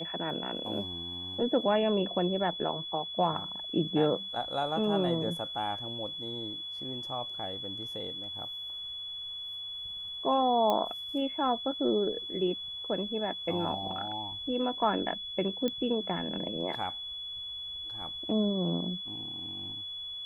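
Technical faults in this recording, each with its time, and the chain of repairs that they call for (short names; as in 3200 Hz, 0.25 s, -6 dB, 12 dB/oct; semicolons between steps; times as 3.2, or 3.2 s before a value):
tone 3400 Hz -37 dBFS
10.7 pop -16 dBFS
15.68 pop -19 dBFS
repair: de-click; notch 3400 Hz, Q 30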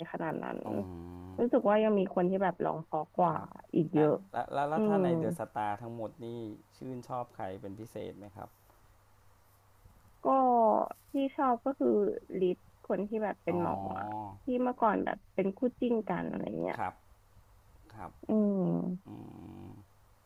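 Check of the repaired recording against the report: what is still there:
10.7 pop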